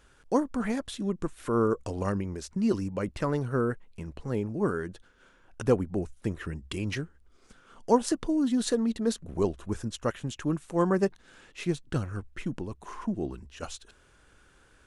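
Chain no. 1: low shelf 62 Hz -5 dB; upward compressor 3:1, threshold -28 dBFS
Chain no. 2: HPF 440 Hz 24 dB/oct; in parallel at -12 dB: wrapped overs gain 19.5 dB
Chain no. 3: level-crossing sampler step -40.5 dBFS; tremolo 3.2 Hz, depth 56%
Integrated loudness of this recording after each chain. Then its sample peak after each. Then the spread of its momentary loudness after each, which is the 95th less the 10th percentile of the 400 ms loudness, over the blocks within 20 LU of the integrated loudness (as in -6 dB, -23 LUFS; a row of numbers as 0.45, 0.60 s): -30.5, -34.0, -33.0 LUFS; -9.0, -11.0, -13.0 dBFS; 15, 14, 14 LU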